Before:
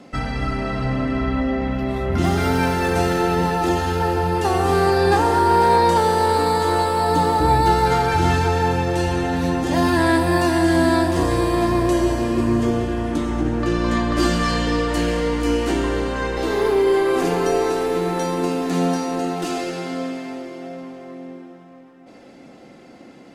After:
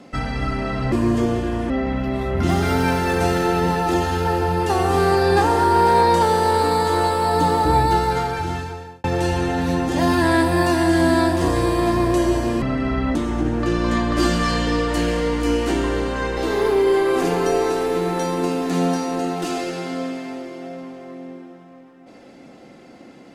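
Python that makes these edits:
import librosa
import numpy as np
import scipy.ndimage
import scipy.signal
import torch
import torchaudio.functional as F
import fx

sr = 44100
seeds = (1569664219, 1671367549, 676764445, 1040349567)

y = fx.edit(x, sr, fx.swap(start_s=0.92, length_s=0.53, other_s=12.37, other_length_s=0.78),
    fx.fade_out_span(start_s=7.47, length_s=1.32), tone=tone)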